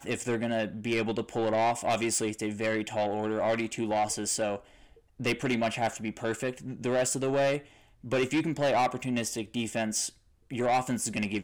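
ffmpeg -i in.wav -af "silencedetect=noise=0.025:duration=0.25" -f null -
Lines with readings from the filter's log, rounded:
silence_start: 4.56
silence_end: 5.20 | silence_duration: 0.64
silence_start: 7.58
silence_end: 8.07 | silence_duration: 0.49
silence_start: 10.08
silence_end: 10.52 | silence_duration: 0.44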